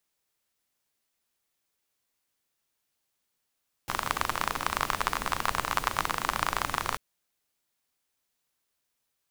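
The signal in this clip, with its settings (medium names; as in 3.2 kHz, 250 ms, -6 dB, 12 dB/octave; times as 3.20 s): rain from filtered ticks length 3.09 s, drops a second 31, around 1.1 kHz, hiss -7 dB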